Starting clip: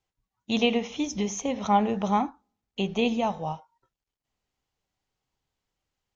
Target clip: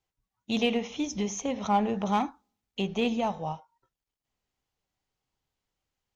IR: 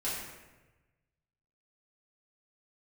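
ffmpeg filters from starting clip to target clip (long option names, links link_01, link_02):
-filter_complex "[0:a]asplit=2[link_01][link_02];[link_02]asoftclip=type=hard:threshold=-22dB,volume=-7dB[link_03];[link_01][link_03]amix=inputs=2:normalize=0,asettb=1/sr,asplit=3[link_04][link_05][link_06];[link_04]atrim=end=2.044[link_07];[link_05]atrim=start=2.04:end=2.8,asetpts=PTS-STARTPTS,afade=type=in:duration=0.004:curve=qsin,afade=type=out:start_time=0.756:duration=0.004:curve=qsin,adynamicequalizer=threshold=0.0158:dfrequency=1700:dqfactor=0.7:tfrequency=1700:tqfactor=0.7:attack=5:release=100:ratio=0.375:range=3.5:mode=boostabove:tftype=highshelf[link_08];[link_06]atrim=start=2.796[link_09];[link_07][link_08]acrossfade=duration=0.004:curve1=hsin:curve2=qsin[link_10];[link_10][link_09]acrossfade=duration=0.004:curve1=qsin:curve2=hsin,volume=-5dB"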